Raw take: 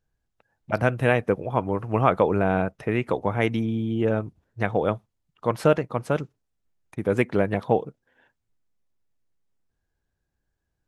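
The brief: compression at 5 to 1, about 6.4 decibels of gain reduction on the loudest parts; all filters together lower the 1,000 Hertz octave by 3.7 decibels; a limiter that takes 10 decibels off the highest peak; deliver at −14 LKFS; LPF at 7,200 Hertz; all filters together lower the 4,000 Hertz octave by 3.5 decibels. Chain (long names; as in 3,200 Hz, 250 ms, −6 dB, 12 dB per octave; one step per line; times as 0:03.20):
low-pass filter 7,200 Hz
parametric band 1,000 Hz −5 dB
parametric band 4,000 Hz −4.5 dB
downward compressor 5 to 1, threshold −23 dBFS
level +19.5 dB
brickwall limiter −1 dBFS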